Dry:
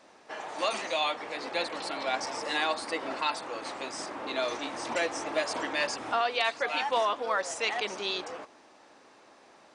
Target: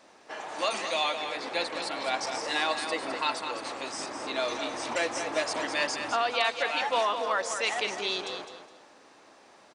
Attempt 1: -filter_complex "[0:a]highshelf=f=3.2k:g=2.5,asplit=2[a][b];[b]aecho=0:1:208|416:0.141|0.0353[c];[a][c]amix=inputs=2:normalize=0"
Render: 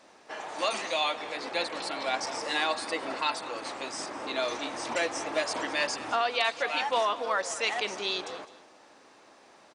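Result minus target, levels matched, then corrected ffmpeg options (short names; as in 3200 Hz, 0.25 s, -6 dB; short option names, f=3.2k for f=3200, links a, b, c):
echo-to-direct -9 dB
-filter_complex "[0:a]highshelf=f=3.2k:g=2.5,asplit=2[a][b];[b]aecho=0:1:208|416|624:0.398|0.0995|0.0249[c];[a][c]amix=inputs=2:normalize=0"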